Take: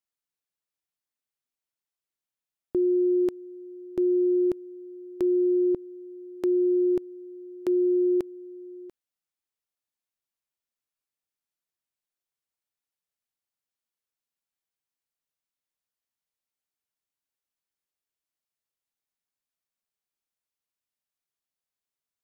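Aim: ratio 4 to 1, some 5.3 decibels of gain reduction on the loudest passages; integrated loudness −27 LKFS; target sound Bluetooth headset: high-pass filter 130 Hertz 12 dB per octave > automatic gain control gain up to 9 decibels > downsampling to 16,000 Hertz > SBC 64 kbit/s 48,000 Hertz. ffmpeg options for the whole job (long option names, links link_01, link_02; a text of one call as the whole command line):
ffmpeg -i in.wav -af "acompressor=threshold=-27dB:ratio=4,highpass=130,dynaudnorm=maxgain=9dB,aresample=16000,aresample=44100,volume=0.5dB" -ar 48000 -c:a sbc -b:a 64k out.sbc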